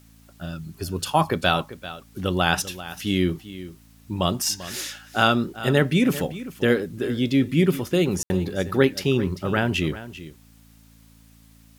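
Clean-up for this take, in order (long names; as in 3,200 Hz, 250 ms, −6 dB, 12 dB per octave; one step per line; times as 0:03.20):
hum removal 55.5 Hz, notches 5
ambience match 0:08.23–0:08.30
downward expander −44 dBFS, range −21 dB
echo removal 392 ms −15 dB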